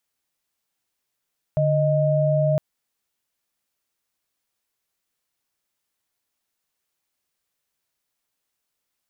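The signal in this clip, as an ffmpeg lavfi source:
-f lavfi -i "aevalsrc='0.106*(sin(2*PI*146.83*t)+sin(2*PI*622.25*t))':d=1.01:s=44100"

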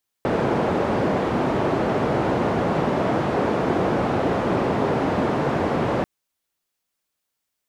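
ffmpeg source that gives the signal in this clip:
-f lavfi -i "anoisesrc=c=white:d=5.79:r=44100:seed=1,highpass=f=110,lowpass=f=610,volume=-0.7dB"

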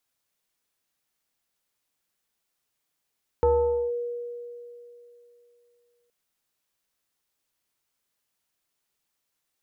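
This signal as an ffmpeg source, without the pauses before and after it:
-f lavfi -i "aevalsrc='0.158*pow(10,-3*t/3)*sin(2*PI*479*t+0.75*clip(1-t/0.49,0,1)*sin(2*PI*0.85*479*t))':d=2.67:s=44100"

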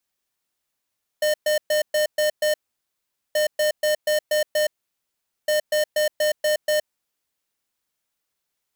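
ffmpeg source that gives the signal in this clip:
-f lavfi -i "aevalsrc='0.1*(2*lt(mod(607*t,1),0.5)-1)*clip(min(mod(mod(t,2.13),0.24),0.12-mod(mod(t,2.13),0.24))/0.005,0,1)*lt(mod(t,2.13),1.44)':d=6.39:s=44100"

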